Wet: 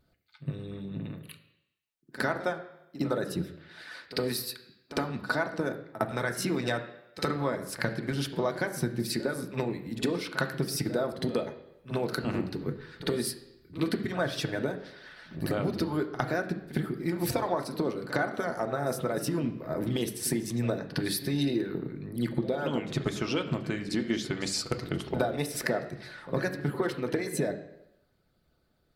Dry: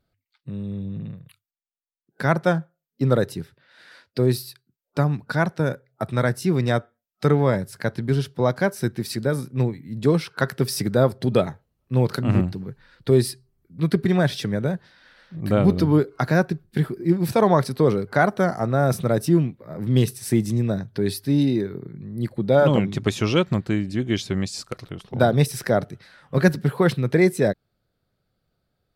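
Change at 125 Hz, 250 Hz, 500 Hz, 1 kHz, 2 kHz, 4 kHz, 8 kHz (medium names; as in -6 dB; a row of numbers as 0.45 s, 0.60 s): -13.0 dB, -9.0 dB, -9.5 dB, -8.0 dB, -5.0 dB, -3.0 dB, -2.0 dB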